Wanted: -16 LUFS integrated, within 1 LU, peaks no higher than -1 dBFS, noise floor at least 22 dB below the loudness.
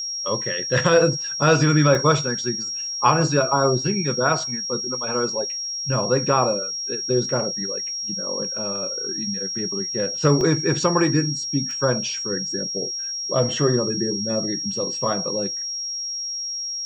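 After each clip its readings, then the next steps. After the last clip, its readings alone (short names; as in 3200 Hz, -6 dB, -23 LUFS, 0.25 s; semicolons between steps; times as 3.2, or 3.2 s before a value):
dropouts 3; longest dropout 1.1 ms; steady tone 5600 Hz; tone level -26 dBFS; loudness -21.5 LUFS; peak -3.0 dBFS; loudness target -16.0 LUFS
-> interpolate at 1.95/10.41/11.71, 1.1 ms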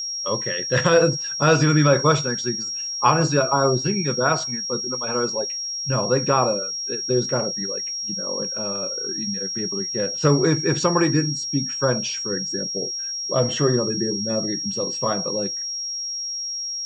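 dropouts 0; steady tone 5600 Hz; tone level -26 dBFS
-> notch 5600 Hz, Q 30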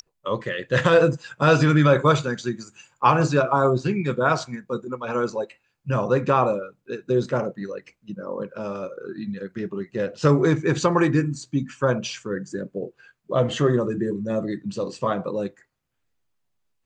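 steady tone none; loudness -23.0 LUFS; peak -4.0 dBFS; loudness target -16.0 LUFS
-> gain +7 dB; limiter -1 dBFS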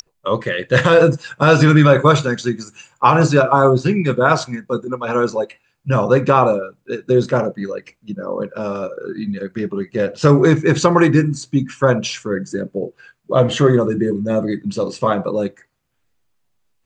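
loudness -16.5 LUFS; peak -1.0 dBFS; noise floor -67 dBFS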